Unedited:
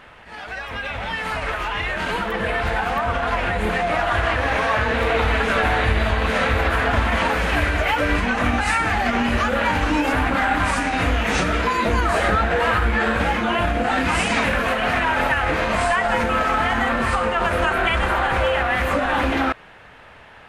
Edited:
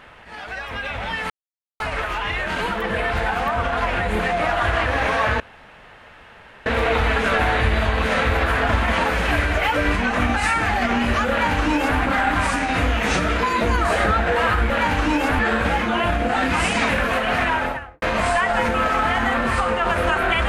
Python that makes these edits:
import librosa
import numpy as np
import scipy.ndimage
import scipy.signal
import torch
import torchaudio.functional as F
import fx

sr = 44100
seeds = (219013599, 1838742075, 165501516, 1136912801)

y = fx.studio_fade_out(x, sr, start_s=15.03, length_s=0.54)
y = fx.edit(y, sr, fx.insert_silence(at_s=1.3, length_s=0.5),
    fx.insert_room_tone(at_s=4.9, length_s=1.26),
    fx.duplicate(start_s=9.54, length_s=0.69, to_s=12.94), tone=tone)